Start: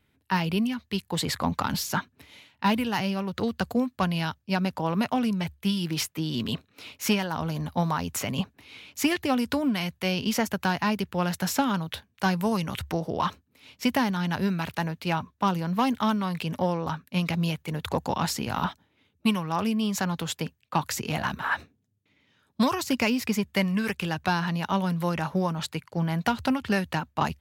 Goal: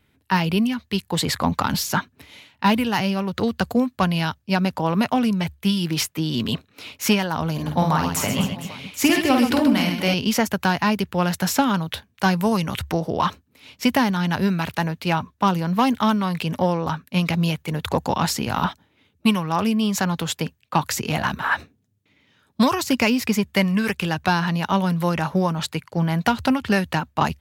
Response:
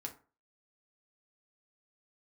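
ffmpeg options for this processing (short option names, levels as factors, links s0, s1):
-filter_complex "[0:a]asettb=1/sr,asplit=3[s0][s1][s2];[s0]atrim=end=7.534[s3];[s1]atrim=start=7.53:end=10.14,asetpts=PTS-STARTPTS,afade=t=in:d=0.004:c=qsin,afade=t=out:st=2.606:d=0.004:c=qsin,aecho=1:1:50|130|258|462.8|790.5:0.631|0.398|0.251|0.158|0.1,atrim=end_sample=115101[s4];[s2]atrim=start=10.136[s5];[s3][s4]acrossfade=d=0.004:c1=hsin:c2=qsin[s6];[s6][s5]acrossfade=d=0.004:c1=qsin:c2=hsin,volume=1.88"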